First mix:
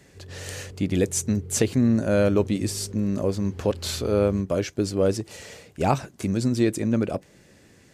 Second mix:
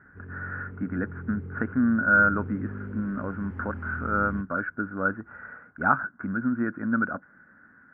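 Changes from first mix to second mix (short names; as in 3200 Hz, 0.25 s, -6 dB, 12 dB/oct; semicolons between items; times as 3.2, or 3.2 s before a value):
speech: add ladder low-pass 1500 Hz, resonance 85%; master: add EQ curve 130 Hz 0 dB, 250 Hz +12 dB, 390 Hz -3 dB, 1600 Hz +13 dB, 4000 Hz -20 dB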